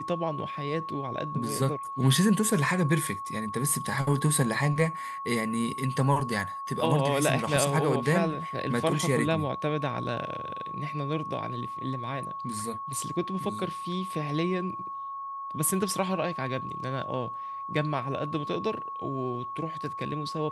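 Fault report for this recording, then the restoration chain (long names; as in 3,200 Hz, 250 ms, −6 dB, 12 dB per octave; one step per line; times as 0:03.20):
whistle 1,100 Hz −34 dBFS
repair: notch filter 1,100 Hz, Q 30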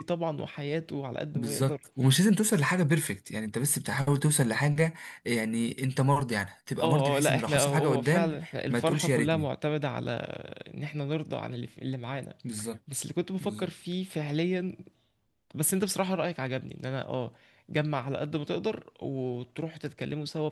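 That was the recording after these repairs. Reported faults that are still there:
none of them is left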